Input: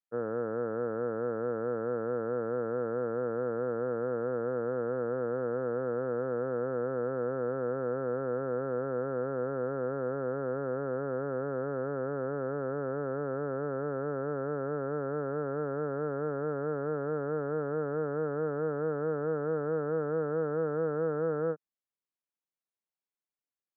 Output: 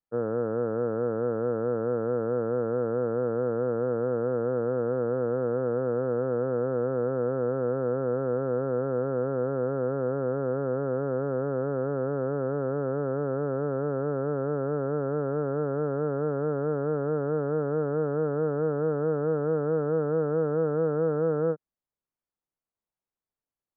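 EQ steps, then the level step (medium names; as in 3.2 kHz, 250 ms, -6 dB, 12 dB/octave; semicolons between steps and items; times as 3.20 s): low-pass 1.3 kHz 12 dB/octave; bass shelf 98 Hz +9 dB; +4.5 dB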